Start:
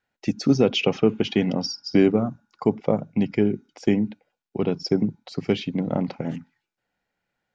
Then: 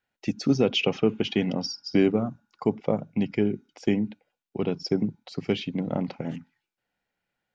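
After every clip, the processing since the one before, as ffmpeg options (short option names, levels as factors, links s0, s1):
-af "equalizer=f=2900:t=o:w=0.77:g=3,volume=0.668"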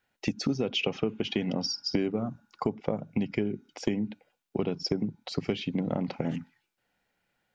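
-af "acompressor=threshold=0.0282:ratio=6,volume=1.88"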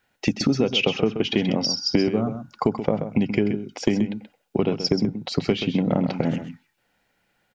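-af "aecho=1:1:130:0.335,volume=2.37"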